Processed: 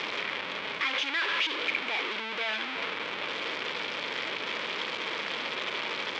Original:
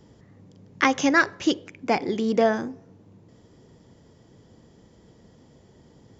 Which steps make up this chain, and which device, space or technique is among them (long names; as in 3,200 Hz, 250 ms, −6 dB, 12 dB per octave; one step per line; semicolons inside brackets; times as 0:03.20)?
home computer beeper (sign of each sample alone; loudspeaker in its box 670–4,100 Hz, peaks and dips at 740 Hz −9 dB, 2,300 Hz +8 dB, 3,300 Hz +6 dB)